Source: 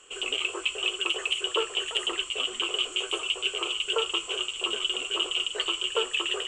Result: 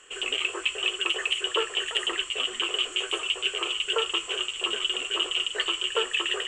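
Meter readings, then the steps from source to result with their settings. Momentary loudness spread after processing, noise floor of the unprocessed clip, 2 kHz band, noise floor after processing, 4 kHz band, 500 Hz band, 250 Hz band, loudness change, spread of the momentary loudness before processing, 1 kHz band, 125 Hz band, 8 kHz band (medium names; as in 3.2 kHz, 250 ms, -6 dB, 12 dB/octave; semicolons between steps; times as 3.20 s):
2 LU, -41 dBFS, +2.0 dB, -40 dBFS, +1.0 dB, 0.0 dB, 0.0 dB, +1.0 dB, 2 LU, +1.5 dB, no reading, 0.0 dB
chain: peaking EQ 1.8 kHz +10.5 dB 0.42 oct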